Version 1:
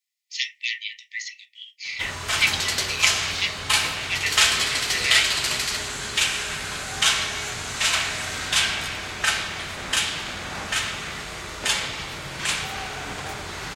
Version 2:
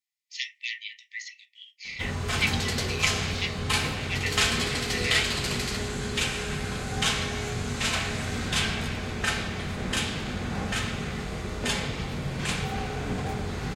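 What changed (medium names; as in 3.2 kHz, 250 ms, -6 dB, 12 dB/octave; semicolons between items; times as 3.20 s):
background: send on; master: add tilt shelf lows +7.5 dB, about 830 Hz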